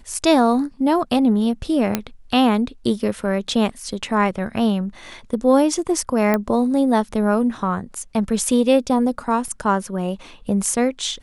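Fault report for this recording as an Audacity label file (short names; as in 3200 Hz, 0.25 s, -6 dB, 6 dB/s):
1.950000	1.950000	pop -4 dBFS
6.340000	6.340000	pop -7 dBFS
9.480000	9.480000	gap 3.3 ms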